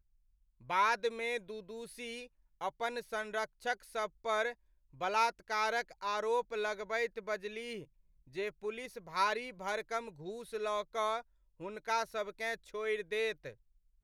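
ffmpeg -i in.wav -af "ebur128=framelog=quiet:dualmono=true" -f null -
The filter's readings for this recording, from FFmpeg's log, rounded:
Integrated loudness:
  I:         -33.5 LUFS
  Threshold: -43.9 LUFS
Loudness range:
  LRA:         3.6 LU
  Threshold: -54.1 LUFS
  LRA low:   -35.7 LUFS
  LRA high:  -32.1 LUFS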